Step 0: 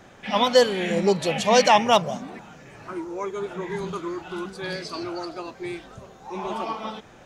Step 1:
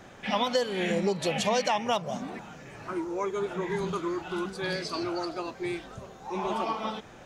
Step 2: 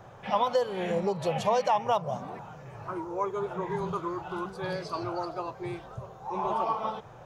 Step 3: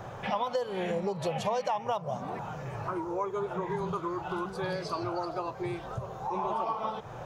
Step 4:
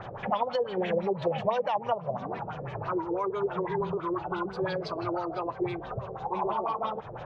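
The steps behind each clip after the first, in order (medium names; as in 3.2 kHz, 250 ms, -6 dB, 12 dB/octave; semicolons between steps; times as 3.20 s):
compression 5:1, threshold -24 dBFS, peak gain reduction 12 dB
graphic EQ 125/250/500/1000/2000/4000/8000 Hz +11/-10/+4/+7/-6/-4/-7 dB; trim -2.5 dB
compression 2.5:1, threshold -41 dBFS, peak gain reduction 13.5 dB; trim +7.5 dB
LFO low-pass sine 6 Hz 390–4100 Hz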